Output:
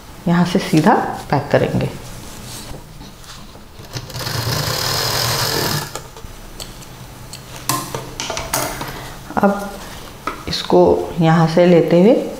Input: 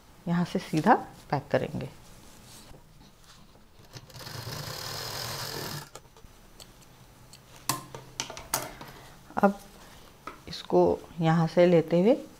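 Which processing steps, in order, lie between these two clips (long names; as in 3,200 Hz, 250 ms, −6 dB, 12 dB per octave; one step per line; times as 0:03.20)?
in parallel at −1 dB: downward compressor, threshold −32 dBFS, peak gain reduction 16.5 dB
on the sum: reverb whose tail is shaped and stops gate 320 ms falling, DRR 10 dB
boost into a limiter +13 dB
level −1 dB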